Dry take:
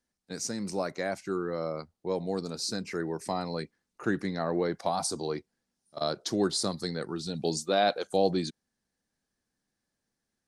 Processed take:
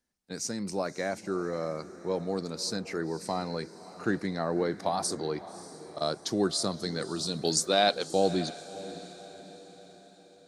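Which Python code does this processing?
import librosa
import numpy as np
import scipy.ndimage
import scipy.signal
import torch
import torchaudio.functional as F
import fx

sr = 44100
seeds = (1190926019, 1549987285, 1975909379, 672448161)

y = fx.high_shelf(x, sr, hz=3400.0, db=10.5, at=(6.96, 8.11))
y = fx.echo_diffused(y, sr, ms=585, feedback_pct=49, wet_db=-15)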